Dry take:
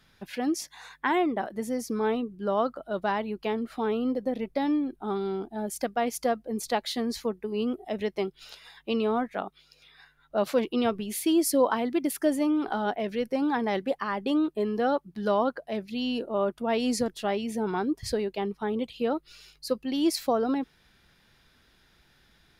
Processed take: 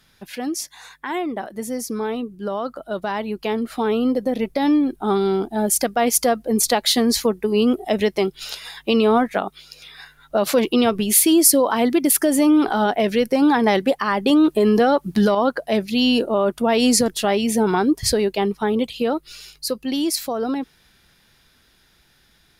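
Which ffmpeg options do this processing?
ffmpeg -i in.wav -filter_complex "[0:a]asettb=1/sr,asplit=3[link_01][link_02][link_03];[link_01]atrim=end=14.304[link_04];[link_02]atrim=start=14.3:end=15.35,asetpts=PTS-STARTPTS,afade=type=in:duration=0.004:curve=qsin,afade=type=out:start_time=1.046:duration=0.004:curve=qsin,acontrast=87[link_05];[link_03]atrim=start=15.346[link_06];[link_04][link_05]acrossfade=duration=0.004:curve1=hsin:curve2=qsin[link_07];[link_07][link_06]acrossfade=duration=0.004:curve1=qsin:curve2=hsin,alimiter=limit=-21dB:level=0:latency=1:release=108,dynaudnorm=framelen=380:gausssize=21:maxgain=9.5dB,equalizer=frequency=12000:width=0.34:gain=8,volume=2.5dB" out.wav

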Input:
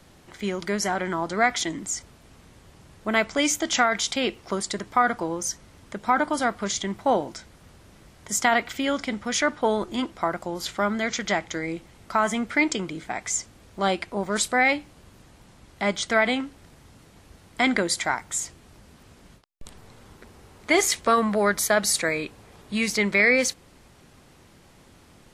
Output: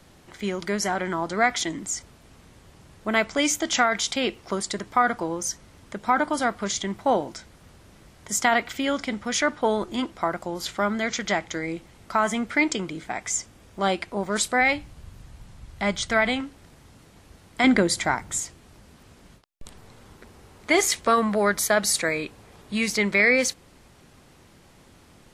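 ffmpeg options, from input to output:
ffmpeg -i in.wav -filter_complex "[0:a]asettb=1/sr,asplit=3[link_01][link_02][link_03];[link_01]atrim=end=13.184[link_04];[link_02]atrim=start=13.18:end=13.91,asetpts=PTS-STARTPTS,afade=type=in:duration=0.004:curve=qsin,afade=type=out:start_time=0.726:duration=0.004:curve=qsin,bandreject=frequency=4200:width=13[link_05];[link_03]atrim=start=13.906[link_06];[link_04][link_05]acrossfade=duration=0.004:curve1=hsin:curve2=qsin[link_07];[link_07][link_06]acrossfade=duration=0.004:curve1=qsin:curve2=hsin,asplit=3[link_08][link_09][link_10];[link_08]afade=type=out:start_time=14.6:duration=0.02[link_11];[link_09]asubboost=boost=3.5:cutoff=140,afade=type=in:start_time=14.6:duration=0.02,afade=type=out:start_time=16.41:duration=0.02[link_12];[link_10]afade=type=in:start_time=16.41:duration=0.02[link_13];[link_11][link_12][link_13]amix=inputs=3:normalize=0,asettb=1/sr,asplit=3[link_14][link_15][link_16];[link_14]atrim=end=17.644[link_17];[link_15]atrim=start=17.64:end=18.4,asetpts=PTS-STARTPTS,afade=type=in:duration=0.004:curve=qsin,afade=type=out:start_time=0.756:duration=0.004:curve=qsin,lowshelf=frequency=400:gain=8.5[link_18];[link_16]atrim=start=18.396[link_19];[link_17][link_18]acrossfade=duration=0.004:curve1=hsin:curve2=qsin[link_20];[link_20][link_19]acrossfade=duration=0.004:curve1=qsin:curve2=hsin" out.wav

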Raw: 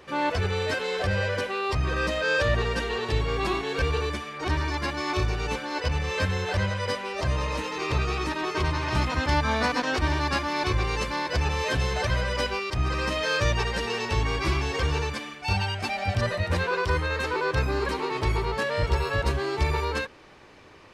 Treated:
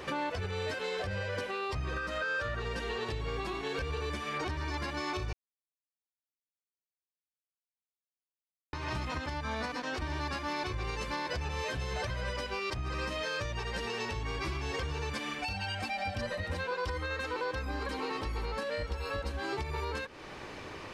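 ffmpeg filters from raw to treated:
ffmpeg -i in.wav -filter_complex "[0:a]asettb=1/sr,asplit=3[link_01][link_02][link_03];[link_01]atrim=end=1.974[link_04];[link_02]atrim=start=1.97:end=2.6,asetpts=PTS-STARTPTS,afade=type=in:duration=0.004:curve=qsin,afade=type=out:start_time=0.626:duration=0.004:curve=qsin,equalizer=frequency=1400:width_type=o:width=0.34:gain=14.5[link_05];[link_03]atrim=start=2.596[link_06];[link_04][link_05]acrossfade=duration=0.004:curve1=hsin:curve2=qsin[link_07];[link_07][link_06]acrossfade=duration=0.004:curve1=qsin:curve2=hsin,asettb=1/sr,asplit=3[link_08][link_09][link_10];[link_08]atrim=end=15.384[link_11];[link_09]atrim=start=15.38:end=19.53,asetpts=PTS-STARTPTS,afade=type=in:duration=0.004:curve=qsin,afade=type=out:start_time=4.146:duration=0.004:curve=qsin,aecho=1:1:3.8:0.65,atrim=end_sample=183015[link_12];[link_10]atrim=start=19.526[link_13];[link_11][link_12]acrossfade=duration=0.004:curve1=hsin:curve2=qsin[link_14];[link_14][link_13]acrossfade=duration=0.004:curve1=qsin:curve2=hsin,asplit=3[link_15][link_16][link_17];[link_15]atrim=end=5.33,asetpts=PTS-STARTPTS,afade=type=out:start_time=5.326:duration=0.004:curve=hsin[link_18];[link_16]atrim=start=5.33:end=8.73,asetpts=PTS-STARTPTS,volume=0[link_19];[link_17]atrim=start=8.73,asetpts=PTS-STARTPTS,afade=type=in:duration=0.004:curve=hsin[link_20];[link_18][link_19][link_20]concat=n=3:v=0:a=1,acompressor=threshold=-34dB:ratio=6,alimiter=level_in=9dB:limit=-24dB:level=0:latency=1:release=441,volume=-9dB,volume=7dB" out.wav

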